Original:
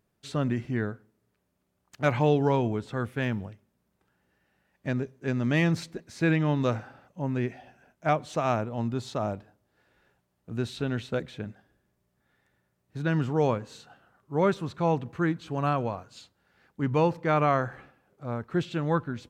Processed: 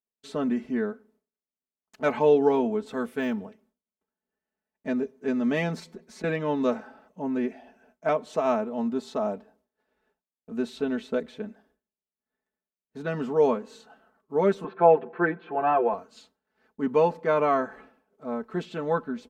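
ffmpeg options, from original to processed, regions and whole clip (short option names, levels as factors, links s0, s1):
-filter_complex "[0:a]asettb=1/sr,asplit=3[s0][s1][s2];[s0]atrim=end=2.864[s3];[s1]atrim=start=2.86:end=3.33,asetpts=PTS-STARTPTS,afade=t=in:d=0.004:c=qsin,afade=t=out:st=0.466:d=0.004:c=qsin,highshelf=f=3900:g=8.5,deesser=0.9[s4];[s2]atrim=start=3.326[s5];[s3][s4]acrossfade=d=0.004:c1=hsin:c2=qsin[s6];[s6][s5]acrossfade=d=0.004:c1=qsin:c2=hsin,asettb=1/sr,asplit=3[s7][s8][s9];[s7]atrim=end=5.794[s10];[s8]atrim=start=5.79:end=6.24,asetpts=PTS-STARTPTS,afade=t=in:d=0.004:c=qsin,afade=t=out:st=0.446:d=0.004:c=qsin,agate=range=0.0224:threshold=0.002:ratio=3:release=100:detection=peak,aecho=1:1:5.5:0.48,atrim=end_sample=19845,acompressor=threshold=0.0141:ratio=10:attack=3.2:release=140:knee=1:detection=peak[s11];[s9]atrim=start=6.236[s12];[s10][s11]acrossfade=d=0.004:c1=hsin:c2=qsin[s13];[s13][s12]acrossfade=d=0.004:c1=qsin:c2=hsin,asettb=1/sr,asplit=3[s14][s15][s16];[s14]atrim=end=14.644[s17];[s15]atrim=start=14.64:end=15.94,asetpts=PTS-STARTPTS,afade=t=in:d=0.004:c=qsin,afade=t=out:st=1.296:d=0.004:c=qsin,highpass=220,equalizer=f=250:t=q:w=4:g=-5,equalizer=f=390:t=q:w=4:g=7,equalizer=f=750:t=q:w=4:g=4,equalizer=f=1500:t=q:w=4:g=5,lowpass=f=2700:w=0.5412,lowpass=f=2700:w=1.3066,aecho=1:1:5.8:0.99,atrim=end_sample=57330[s18];[s16]atrim=start=15.936[s19];[s17][s18]acrossfade=d=0.004:c1=hsin:c2=qsin[s20];[s20][s19]acrossfade=d=0.004:c1=qsin:c2=hsin,equalizer=f=125:t=o:w=1:g=-11,equalizer=f=250:t=o:w=1:g=7,equalizer=f=500:t=o:w=1:g=6,equalizer=f=1000:t=o:w=1:g=4,agate=range=0.0224:threshold=0.00158:ratio=3:detection=peak,aecho=1:1:4.6:0.74,volume=0.531"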